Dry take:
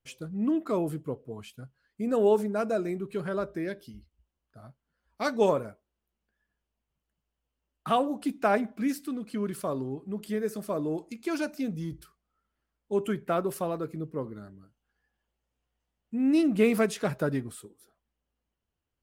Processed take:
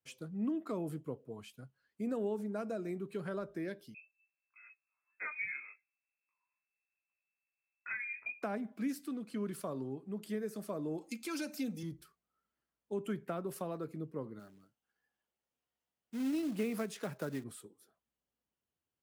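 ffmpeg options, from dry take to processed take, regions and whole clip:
-filter_complex "[0:a]asettb=1/sr,asplit=3[a][b][c];[a]atrim=end=3.944[d];[b]atrim=start=3.94:end=8.43,asetpts=PTS-STARTPTS,afade=t=in:d=0.004:c=qsin,afade=t=out:st=4.486:d=0.004:c=qsin,flanger=delay=19:depth=2.2:speed=2.1,lowpass=f=2.3k:t=q:w=0.5098,lowpass=f=2.3k:t=q:w=0.6013,lowpass=f=2.3k:t=q:w=0.9,lowpass=f=2.3k:t=q:w=2.563,afreqshift=-2700[e];[c]atrim=start=8.426[f];[d][e]acrossfade=d=0.004:c1=hsin:c2=qsin[g];[g][f]acrossfade=d=0.004:c1=qsin:c2=hsin,asettb=1/sr,asplit=3[h][i][j];[h]atrim=end=11.014[k];[i]atrim=start=11.01:end=11.83,asetpts=PTS-STARTPTS,afade=t=in:d=0.004:c=qsin,afade=t=out:st=0.816:d=0.004:c=qsin,acompressor=threshold=-33dB:ratio=2:attack=3.2:release=140:knee=1:detection=peak,highshelf=f=2.2k:g=9,aecho=1:1:3.8:0.72,atrim=end_sample=36162[l];[j]atrim=start=11.826[m];[k][l]acrossfade=d=0.004:c1=hsin:c2=qsin[n];[n][m]acrossfade=d=0.004:c1=qsin:c2=hsin,asettb=1/sr,asplit=3[o][p][q];[o]atrim=end=14.394[r];[p]atrim=start=14.39:end=17.44,asetpts=PTS-STARTPTS,afade=t=in:d=0.004:c=qsin,afade=t=out:st=3.046:d=0.004:c=qsin,lowshelf=f=200:g=-7,acrusher=bits=4:mode=log:mix=0:aa=0.000001[s];[q]atrim=start=17.436[t];[r][s]acrossfade=d=0.004:c1=hsin:c2=qsin[u];[u][t]acrossfade=d=0.004:c1=qsin:c2=hsin,acrossover=split=250[v][w];[w]acompressor=threshold=-31dB:ratio=6[x];[v][x]amix=inputs=2:normalize=0,highpass=110,volume=-6dB"

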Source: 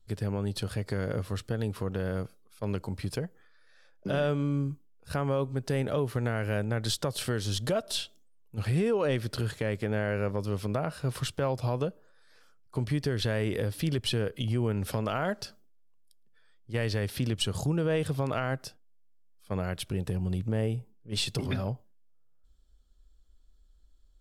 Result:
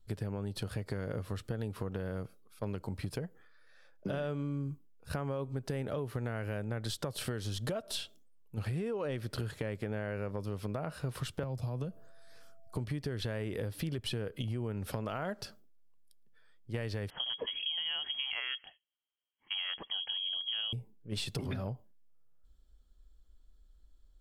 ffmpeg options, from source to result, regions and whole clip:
-filter_complex "[0:a]asettb=1/sr,asplit=3[a][b][c];[a]atrim=end=11.434[d];[b]atrim=start=11.43:end=12.77,asetpts=PTS-STARTPTS,afade=t=in:d=0.004:c=qsin,afade=t=out:st=1.336:d=0.004:c=qsin,bass=f=250:g=9,treble=f=4k:g=7,acrossover=split=140|810[e][f][g];[e]acompressor=threshold=-36dB:ratio=4[h];[f]acompressor=threshold=-35dB:ratio=4[i];[g]acompressor=threshold=-48dB:ratio=4[j];[h][i][j]amix=inputs=3:normalize=0,aeval=exprs='val(0)+0.000631*sin(2*PI*670*n/s)':c=same[k];[c]atrim=start=12.766[l];[d][k]acrossfade=d=0.004:c1=hsin:c2=qsin[m];[m][l]acrossfade=d=0.004:c1=qsin:c2=hsin,asettb=1/sr,asplit=3[n][o][p];[n]atrim=end=17.104[q];[o]atrim=start=17.1:end=20.73,asetpts=PTS-STARTPTS,afade=t=in:d=0.004:c=qsin,afade=t=out:st=3.626:d=0.004:c=qsin,highpass=85,lowpass=f=2.9k:t=q:w=0.5098,lowpass=f=2.9k:t=q:w=0.6013,lowpass=f=2.9k:t=q:w=0.9,lowpass=f=2.9k:t=q:w=2.563,afreqshift=-3400[r];[p]atrim=start=20.726[s];[q][r]acrossfade=d=0.004:c1=hsin:c2=qsin[t];[t][s]acrossfade=d=0.004:c1=qsin:c2=hsin,equalizer=f=6.1k:w=0.6:g=-4,acompressor=threshold=-33dB:ratio=6"

